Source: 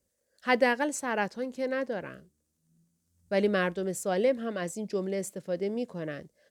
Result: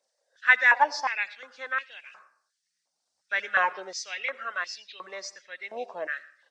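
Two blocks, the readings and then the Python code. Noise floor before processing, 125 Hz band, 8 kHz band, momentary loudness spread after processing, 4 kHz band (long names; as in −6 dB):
−78 dBFS, below −25 dB, −2.5 dB, 21 LU, +4.0 dB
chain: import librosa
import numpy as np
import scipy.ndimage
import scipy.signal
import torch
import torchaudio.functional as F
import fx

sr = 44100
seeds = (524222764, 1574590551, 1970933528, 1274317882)

y = fx.freq_compress(x, sr, knee_hz=2300.0, ratio=1.5)
y = fx.dereverb_blind(y, sr, rt60_s=0.59)
y = fx.rev_freeverb(y, sr, rt60_s=0.61, hf_ratio=0.65, predelay_ms=45, drr_db=16.5)
y = fx.filter_held_highpass(y, sr, hz=2.8, low_hz=740.0, high_hz=2800.0)
y = y * 10.0 ** (2.5 / 20.0)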